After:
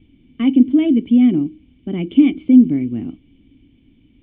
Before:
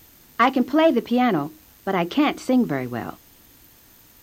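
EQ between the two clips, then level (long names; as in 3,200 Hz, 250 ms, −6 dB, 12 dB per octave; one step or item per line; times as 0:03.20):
formant resonators in series i
low-shelf EQ 160 Hz +9.5 dB
+9.0 dB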